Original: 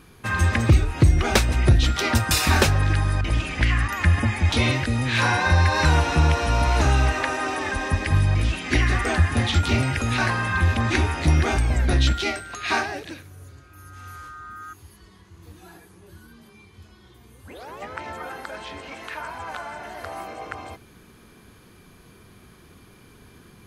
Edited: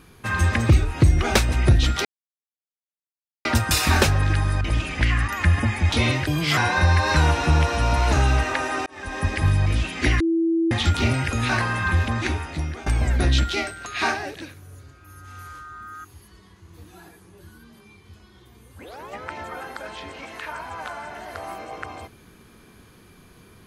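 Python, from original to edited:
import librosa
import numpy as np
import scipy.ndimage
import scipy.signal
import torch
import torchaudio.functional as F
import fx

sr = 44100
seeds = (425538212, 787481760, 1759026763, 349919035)

y = fx.edit(x, sr, fx.insert_silence(at_s=2.05, length_s=1.4),
    fx.speed_span(start_s=4.87, length_s=0.39, speed=1.29),
    fx.fade_in_span(start_s=7.55, length_s=0.42),
    fx.bleep(start_s=8.89, length_s=0.51, hz=330.0, db=-17.5),
    fx.fade_out_to(start_s=10.57, length_s=0.98, floor_db=-17.5), tone=tone)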